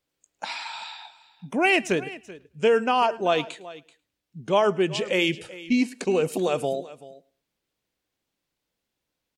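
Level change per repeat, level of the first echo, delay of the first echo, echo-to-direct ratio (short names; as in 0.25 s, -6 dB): no steady repeat, -22.5 dB, 0.107 s, -16.5 dB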